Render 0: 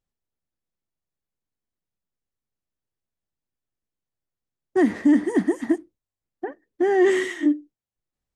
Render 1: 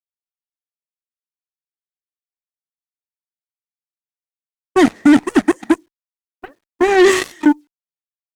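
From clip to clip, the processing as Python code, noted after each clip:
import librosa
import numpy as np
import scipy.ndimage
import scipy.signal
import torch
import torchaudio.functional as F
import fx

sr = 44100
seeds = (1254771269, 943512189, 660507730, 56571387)

y = fx.quant_dither(x, sr, seeds[0], bits=10, dither='none')
y = fx.dynamic_eq(y, sr, hz=6600.0, q=0.71, threshold_db=-49.0, ratio=4.0, max_db=7)
y = fx.cheby_harmonics(y, sr, harmonics=(7,), levels_db=(-15,), full_scale_db=-9.0)
y = y * librosa.db_to_amplitude(6.5)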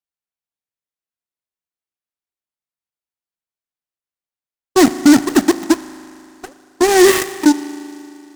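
y = fx.rev_spring(x, sr, rt60_s=2.7, pass_ms=(38,), chirp_ms=40, drr_db=13.0)
y = fx.noise_mod_delay(y, sr, seeds[1], noise_hz=5400.0, depth_ms=0.06)
y = y * librosa.db_to_amplitude(1.0)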